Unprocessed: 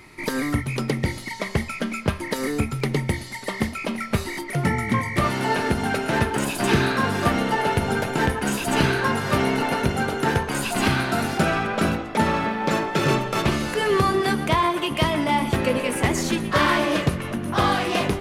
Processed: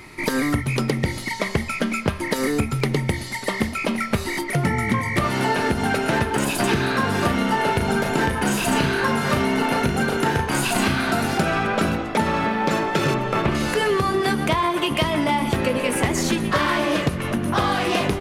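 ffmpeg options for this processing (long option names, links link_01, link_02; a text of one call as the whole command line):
ffmpeg -i in.wav -filter_complex "[0:a]asplit=3[link_01][link_02][link_03];[link_01]afade=type=out:start_time=7.21:duration=0.02[link_04];[link_02]asplit=2[link_05][link_06];[link_06]adelay=35,volume=-5dB[link_07];[link_05][link_07]amix=inputs=2:normalize=0,afade=type=in:start_time=7.21:duration=0.02,afade=type=out:start_time=11.11:duration=0.02[link_08];[link_03]afade=type=in:start_time=11.11:duration=0.02[link_09];[link_04][link_08][link_09]amix=inputs=3:normalize=0,asettb=1/sr,asplit=3[link_10][link_11][link_12];[link_10]atrim=end=13.144[link_13];[link_11]atrim=start=13.14:end=13.55,asetpts=PTS-STARTPTS,afade=type=in:duration=0.004:curve=qsin,afade=type=out:start_time=0.406:duration=0.004:curve=qsin,acrossover=split=2900[link_14][link_15];[link_15]acompressor=threshold=-46dB:ratio=4:attack=1:release=60[link_16];[link_14][link_16]amix=inputs=2:normalize=0[link_17];[link_12]atrim=start=13.546[link_18];[link_13][link_17]acrossfade=duration=0.004:curve1=hsin:curve2=qsin[link_19];[link_19][link_18]acrossfade=duration=0.004:curve1=qsin:curve2=hsin,acompressor=threshold=-22dB:ratio=6,volume=5dB" out.wav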